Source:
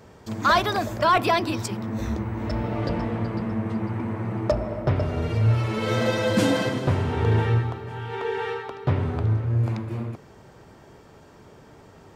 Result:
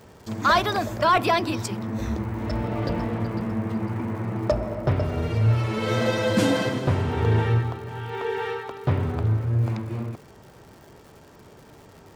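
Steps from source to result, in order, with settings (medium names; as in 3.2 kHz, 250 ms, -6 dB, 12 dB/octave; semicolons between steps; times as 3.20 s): crackle 220 per s -42 dBFS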